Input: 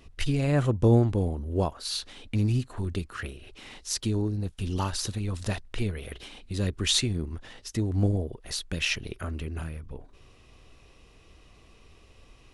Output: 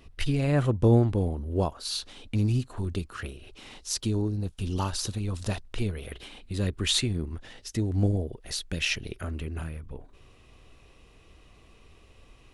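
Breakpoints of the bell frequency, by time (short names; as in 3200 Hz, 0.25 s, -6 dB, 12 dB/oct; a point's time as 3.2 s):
bell -4 dB 0.57 oct
6800 Hz
from 1.62 s 1900 Hz
from 6.06 s 5800 Hz
from 7.39 s 1100 Hz
from 9.3 s 5300 Hz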